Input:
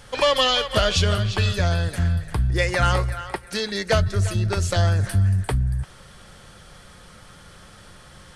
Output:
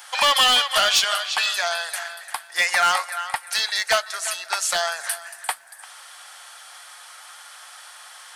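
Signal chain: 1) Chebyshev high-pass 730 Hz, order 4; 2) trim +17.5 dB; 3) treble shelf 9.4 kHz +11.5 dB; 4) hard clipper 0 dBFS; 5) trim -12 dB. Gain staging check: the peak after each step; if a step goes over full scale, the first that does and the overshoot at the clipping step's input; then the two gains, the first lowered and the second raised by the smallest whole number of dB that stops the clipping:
-9.5 dBFS, +8.0 dBFS, +9.5 dBFS, 0.0 dBFS, -12.0 dBFS; step 2, 9.5 dB; step 2 +7.5 dB, step 5 -2 dB

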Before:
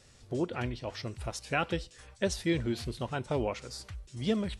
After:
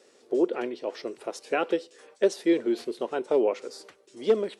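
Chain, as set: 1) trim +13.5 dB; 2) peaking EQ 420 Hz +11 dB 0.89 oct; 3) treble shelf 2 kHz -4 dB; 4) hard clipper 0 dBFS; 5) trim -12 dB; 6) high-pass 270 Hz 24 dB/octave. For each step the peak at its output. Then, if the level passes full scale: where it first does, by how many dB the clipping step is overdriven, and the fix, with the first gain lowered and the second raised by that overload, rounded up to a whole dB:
-1.5 dBFS, +4.0 dBFS, +3.5 dBFS, 0.0 dBFS, -12.0 dBFS, -10.0 dBFS; step 2, 3.5 dB; step 1 +9.5 dB, step 5 -8 dB

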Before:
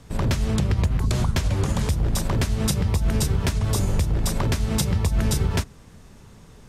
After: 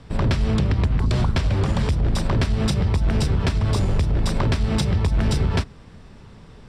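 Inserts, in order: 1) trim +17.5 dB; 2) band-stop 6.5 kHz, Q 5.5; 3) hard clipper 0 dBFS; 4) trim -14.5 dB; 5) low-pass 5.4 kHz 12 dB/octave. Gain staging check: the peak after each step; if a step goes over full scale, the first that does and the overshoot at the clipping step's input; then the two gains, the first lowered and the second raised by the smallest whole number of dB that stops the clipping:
+7.0 dBFS, +7.0 dBFS, 0.0 dBFS, -14.5 dBFS, -14.0 dBFS; step 1, 7.0 dB; step 1 +10.5 dB, step 4 -7.5 dB

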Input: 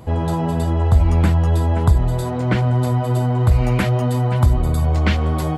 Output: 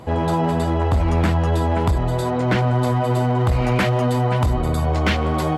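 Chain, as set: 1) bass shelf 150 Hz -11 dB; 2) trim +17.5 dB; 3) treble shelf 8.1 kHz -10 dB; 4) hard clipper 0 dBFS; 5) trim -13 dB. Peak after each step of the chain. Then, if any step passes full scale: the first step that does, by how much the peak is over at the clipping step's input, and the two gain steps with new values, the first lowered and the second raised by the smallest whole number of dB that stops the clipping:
-8.5 dBFS, +9.0 dBFS, +9.0 dBFS, 0.0 dBFS, -13.0 dBFS; step 2, 9.0 dB; step 2 +8.5 dB, step 5 -4 dB

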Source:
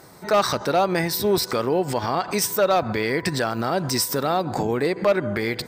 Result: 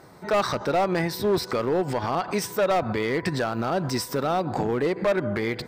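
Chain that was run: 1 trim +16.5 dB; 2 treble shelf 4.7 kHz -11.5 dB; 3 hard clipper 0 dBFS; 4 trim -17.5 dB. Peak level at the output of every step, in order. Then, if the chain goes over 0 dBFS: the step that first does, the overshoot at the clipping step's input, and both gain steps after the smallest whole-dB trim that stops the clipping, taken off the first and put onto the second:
+6.5 dBFS, +5.5 dBFS, 0.0 dBFS, -17.5 dBFS; step 1, 5.5 dB; step 1 +10.5 dB, step 4 -11.5 dB

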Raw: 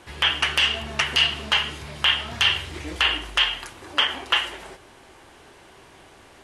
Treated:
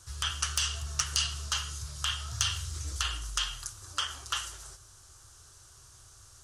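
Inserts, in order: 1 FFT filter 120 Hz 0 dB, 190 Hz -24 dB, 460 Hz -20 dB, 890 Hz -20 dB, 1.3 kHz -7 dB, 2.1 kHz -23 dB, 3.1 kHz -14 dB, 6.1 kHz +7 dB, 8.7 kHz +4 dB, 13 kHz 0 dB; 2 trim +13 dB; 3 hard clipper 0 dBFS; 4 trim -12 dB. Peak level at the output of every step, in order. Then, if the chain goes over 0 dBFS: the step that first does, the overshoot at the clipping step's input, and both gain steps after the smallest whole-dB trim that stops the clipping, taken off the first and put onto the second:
-6.5 dBFS, +6.5 dBFS, 0.0 dBFS, -12.0 dBFS; step 2, 6.5 dB; step 2 +6 dB, step 4 -5 dB

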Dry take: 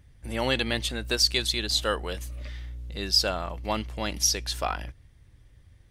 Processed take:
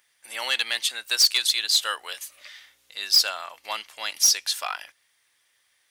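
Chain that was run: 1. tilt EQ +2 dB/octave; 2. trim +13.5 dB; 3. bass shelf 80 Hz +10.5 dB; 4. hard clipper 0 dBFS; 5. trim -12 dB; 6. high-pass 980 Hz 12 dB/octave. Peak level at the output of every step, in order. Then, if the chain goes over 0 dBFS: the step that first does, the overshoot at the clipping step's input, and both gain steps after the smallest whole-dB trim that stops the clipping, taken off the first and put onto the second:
-5.5 dBFS, +8.0 dBFS, +8.0 dBFS, 0.0 dBFS, -12.0 dBFS, -8.5 dBFS; step 2, 8.0 dB; step 2 +5.5 dB, step 5 -4 dB

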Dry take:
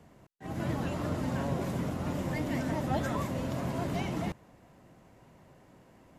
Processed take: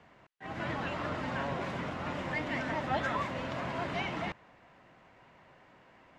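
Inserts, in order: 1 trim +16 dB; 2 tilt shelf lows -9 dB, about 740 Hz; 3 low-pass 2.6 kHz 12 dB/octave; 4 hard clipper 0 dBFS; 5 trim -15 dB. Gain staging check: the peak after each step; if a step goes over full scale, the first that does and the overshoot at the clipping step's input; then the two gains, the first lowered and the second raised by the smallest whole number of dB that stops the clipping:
-1.0 dBFS, -3.5 dBFS, -4.0 dBFS, -4.0 dBFS, -19.0 dBFS; nothing clips

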